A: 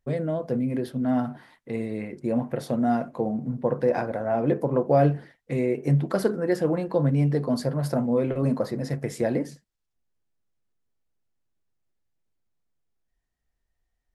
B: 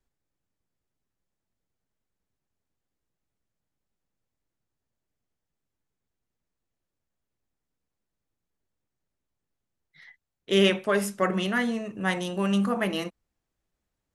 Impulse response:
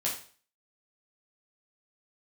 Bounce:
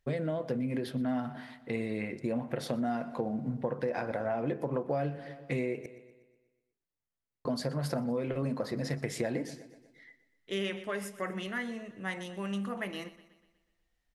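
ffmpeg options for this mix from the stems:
-filter_complex "[0:a]equalizer=frequency=2900:width_type=o:width=2.3:gain=7.5,volume=-2dB,asplit=3[link_01][link_02][link_03];[link_01]atrim=end=5.86,asetpts=PTS-STARTPTS,afade=type=out:start_time=5.856:duration=0.004:curve=hsin[link_04];[link_02]atrim=start=5.86:end=7.45,asetpts=PTS-STARTPTS,volume=0[link_05];[link_03]atrim=start=7.45,asetpts=PTS-STARTPTS,afade=type=in:duration=0.004:curve=hsin[link_06];[link_04][link_05][link_06]concat=n=3:v=0:a=1,asplit=2[link_07][link_08];[link_08]volume=-19.5dB[link_09];[1:a]equalizer=frequency=2000:width_type=o:width=0.37:gain=6,volume=-10.5dB,asplit=2[link_10][link_11];[link_11]volume=-17dB[link_12];[link_09][link_12]amix=inputs=2:normalize=0,aecho=0:1:122|244|366|488|610|732|854|976:1|0.52|0.27|0.141|0.0731|0.038|0.0198|0.0103[link_13];[link_07][link_10][link_13]amix=inputs=3:normalize=0,acompressor=threshold=-29dB:ratio=6"

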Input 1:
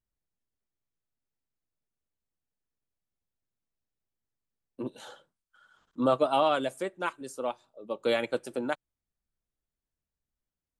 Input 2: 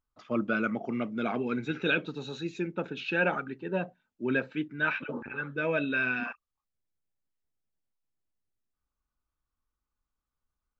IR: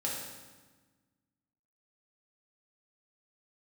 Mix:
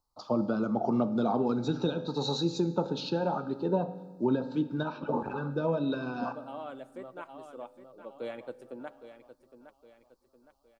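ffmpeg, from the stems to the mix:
-filter_complex "[0:a]highshelf=frequency=2100:gain=-11.5,adelay=150,volume=-15.5dB,asplit=3[link_01][link_02][link_03];[link_02]volume=-19.5dB[link_04];[link_03]volume=-11.5dB[link_05];[1:a]alimiter=limit=-21dB:level=0:latency=1:release=329,acrossover=split=300[link_06][link_07];[link_07]acompressor=threshold=-39dB:ratio=10[link_08];[link_06][link_08]amix=inputs=2:normalize=0,firequalizer=gain_entry='entry(280,0);entry(890,12);entry(2000,-24);entry(4300,11);entry(6500,4)':delay=0.05:min_phase=1,volume=0.5dB,asplit=3[link_09][link_10][link_11];[link_10]volume=-13dB[link_12];[link_11]apad=whole_len=482592[link_13];[link_01][link_13]sidechaincompress=threshold=-45dB:ratio=8:attack=16:release=924[link_14];[2:a]atrim=start_sample=2205[link_15];[link_04][link_12]amix=inputs=2:normalize=0[link_16];[link_16][link_15]afir=irnorm=-1:irlink=0[link_17];[link_05]aecho=0:1:813|1626|2439|3252|4065|4878:1|0.41|0.168|0.0689|0.0283|0.0116[link_18];[link_14][link_09][link_17][link_18]amix=inputs=4:normalize=0,dynaudnorm=framelen=120:gausssize=5:maxgain=4.5dB"

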